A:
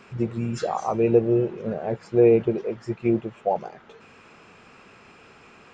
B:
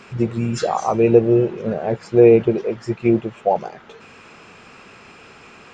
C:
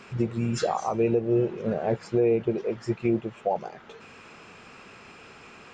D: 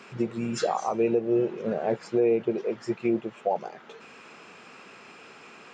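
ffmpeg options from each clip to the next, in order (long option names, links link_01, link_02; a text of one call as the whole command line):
ffmpeg -i in.wav -af "equalizer=frequency=6200:width=0.37:gain=3,volume=5.5dB" out.wav
ffmpeg -i in.wav -af "alimiter=limit=-10.5dB:level=0:latency=1:release=386,volume=-4dB" out.wav
ffmpeg -i in.wav -af "highpass=190" out.wav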